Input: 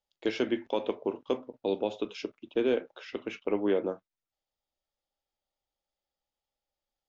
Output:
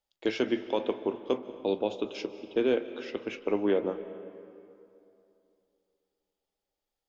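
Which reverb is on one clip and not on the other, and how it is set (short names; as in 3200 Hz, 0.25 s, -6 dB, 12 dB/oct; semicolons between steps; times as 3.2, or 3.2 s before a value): digital reverb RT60 2.8 s, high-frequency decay 0.6×, pre-delay 0.11 s, DRR 13 dB; gain +1 dB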